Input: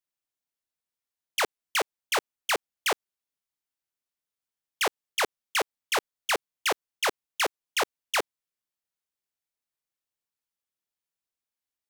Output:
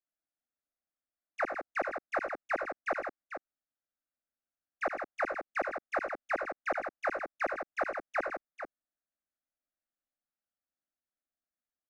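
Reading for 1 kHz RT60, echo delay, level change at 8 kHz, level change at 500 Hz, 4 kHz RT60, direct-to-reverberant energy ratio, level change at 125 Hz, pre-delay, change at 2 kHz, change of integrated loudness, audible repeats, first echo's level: no reverb audible, 75 ms, below −25 dB, −1.5 dB, no reverb audible, no reverb audible, can't be measured, no reverb audible, −5.0 dB, −6.5 dB, 3, −10.0 dB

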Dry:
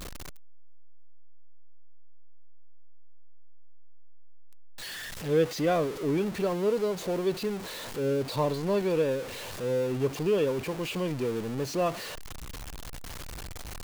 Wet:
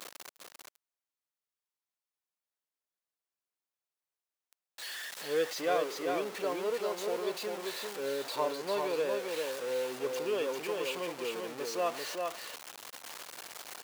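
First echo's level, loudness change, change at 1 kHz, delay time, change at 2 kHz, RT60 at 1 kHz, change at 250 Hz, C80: −4.0 dB, −5.5 dB, −1.0 dB, 394 ms, −0.5 dB, no reverb audible, −11.0 dB, no reverb audible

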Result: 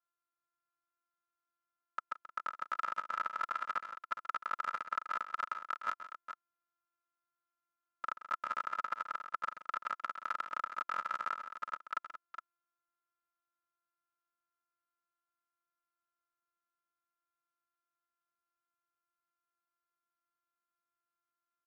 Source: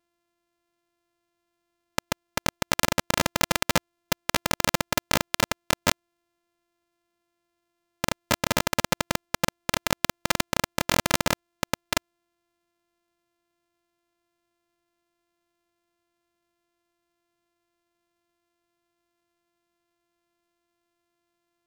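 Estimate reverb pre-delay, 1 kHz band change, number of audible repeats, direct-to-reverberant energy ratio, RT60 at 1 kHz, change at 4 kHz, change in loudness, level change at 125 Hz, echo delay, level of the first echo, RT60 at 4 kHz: no reverb audible, −6.0 dB, 3, no reverb audible, no reverb audible, −27.5 dB, −12.5 dB, below −35 dB, 131 ms, −13.0 dB, no reverb audible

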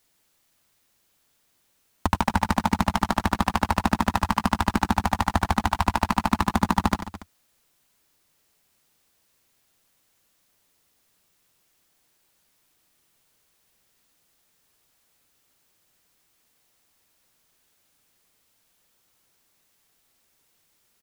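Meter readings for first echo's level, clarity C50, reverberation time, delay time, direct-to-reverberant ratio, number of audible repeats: −11.5 dB, no reverb audible, no reverb audible, 92 ms, no reverb audible, 3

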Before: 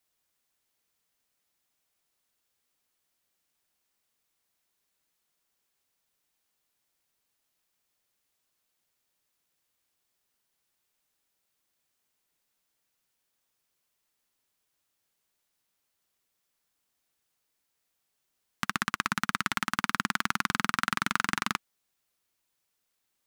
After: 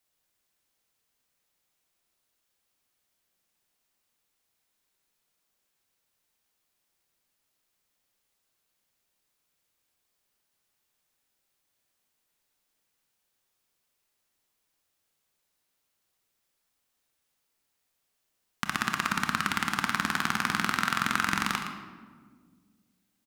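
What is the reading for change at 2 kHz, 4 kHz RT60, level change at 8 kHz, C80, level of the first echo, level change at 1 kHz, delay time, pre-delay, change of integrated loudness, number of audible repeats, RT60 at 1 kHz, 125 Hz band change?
+1.5 dB, 0.90 s, +1.0 dB, 5.5 dB, −10.0 dB, +1.5 dB, 115 ms, 24 ms, +1.5 dB, 1, 1.4 s, +2.5 dB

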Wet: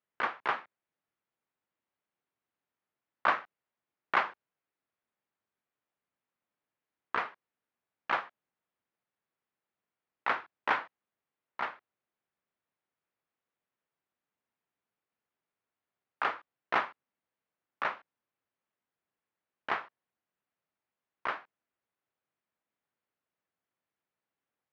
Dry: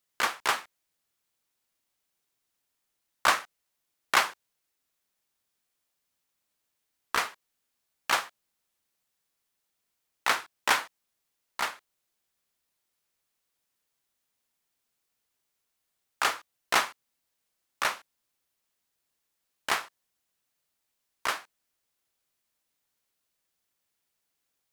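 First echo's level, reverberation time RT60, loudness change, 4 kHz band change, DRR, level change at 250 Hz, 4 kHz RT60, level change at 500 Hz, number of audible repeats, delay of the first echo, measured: no echo audible, no reverb audible, −5.0 dB, −14.0 dB, no reverb audible, −2.5 dB, no reverb audible, −2.5 dB, no echo audible, no echo audible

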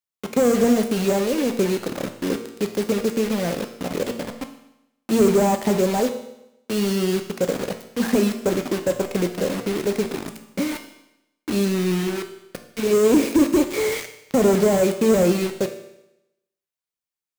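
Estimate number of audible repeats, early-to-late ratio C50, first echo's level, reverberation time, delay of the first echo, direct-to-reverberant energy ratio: no echo audible, 10.0 dB, no echo audible, 0.85 s, no echo audible, 6.0 dB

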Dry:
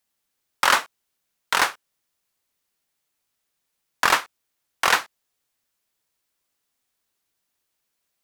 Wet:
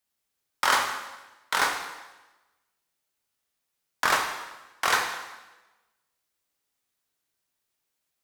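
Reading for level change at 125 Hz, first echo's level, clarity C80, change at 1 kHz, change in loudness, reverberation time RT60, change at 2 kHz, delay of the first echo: −3.0 dB, no echo audible, 7.5 dB, −3.0 dB, −4.5 dB, 1.1 s, −3.5 dB, no echo audible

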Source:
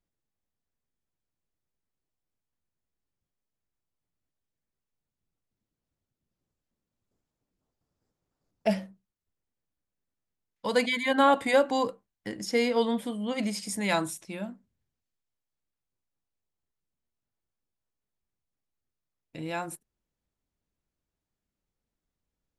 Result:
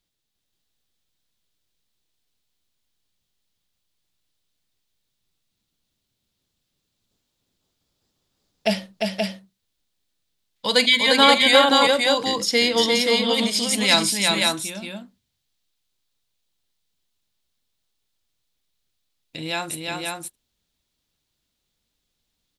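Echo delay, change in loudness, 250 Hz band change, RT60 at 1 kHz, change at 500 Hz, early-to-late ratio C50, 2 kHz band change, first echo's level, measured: 44 ms, +9.5 dB, +5.5 dB, no reverb audible, +6.5 dB, no reverb audible, +11.5 dB, −19.0 dB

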